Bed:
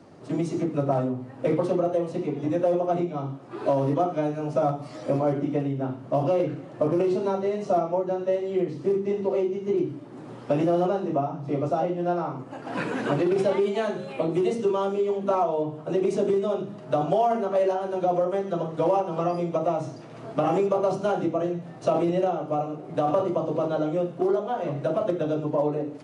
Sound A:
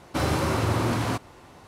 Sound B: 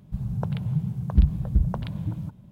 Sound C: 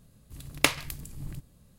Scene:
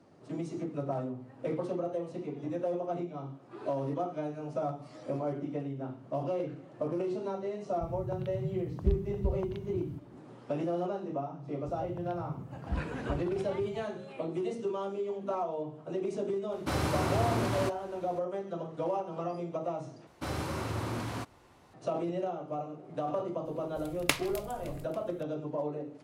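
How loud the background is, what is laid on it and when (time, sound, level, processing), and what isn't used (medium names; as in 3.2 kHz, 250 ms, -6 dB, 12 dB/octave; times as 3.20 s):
bed -10 dB
7.69 s: add B -10.5 dB
11.54 s: add B -15 dB + high-pass 52 Hz
16.52 s: add A -6 dB
20.07 s: replace with A -10.5 dB
23.45 s: add C -5.5 dB + feedback echo behind a high-pass 282 ms, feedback 63%, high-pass 2.2 kHz, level -22 dB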